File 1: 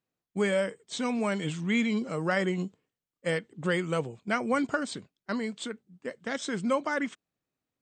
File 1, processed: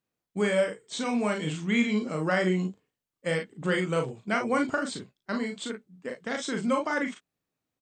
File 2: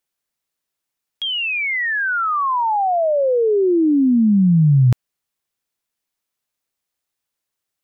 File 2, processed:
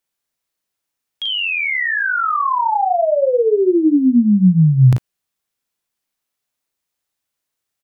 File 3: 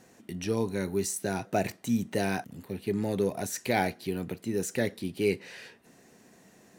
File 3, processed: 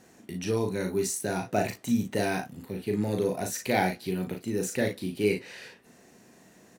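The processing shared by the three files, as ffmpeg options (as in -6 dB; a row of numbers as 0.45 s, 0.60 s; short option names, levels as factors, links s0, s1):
-af "aecho=1:1:38|54:0.596|0.266"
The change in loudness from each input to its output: +1.5 LU, +1.5 LU, +1.5 LU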